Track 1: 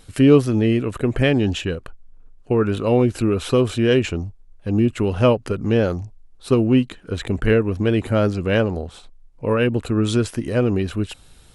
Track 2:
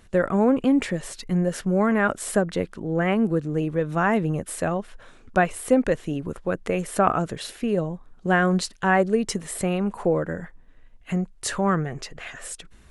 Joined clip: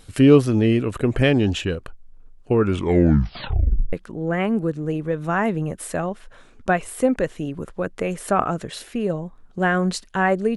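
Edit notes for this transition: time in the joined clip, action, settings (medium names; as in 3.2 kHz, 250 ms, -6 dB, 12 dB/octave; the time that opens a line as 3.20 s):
track 1
2.63 s: tape stop 1.30 s
3.93 s: go over to track 2 from 2.61 s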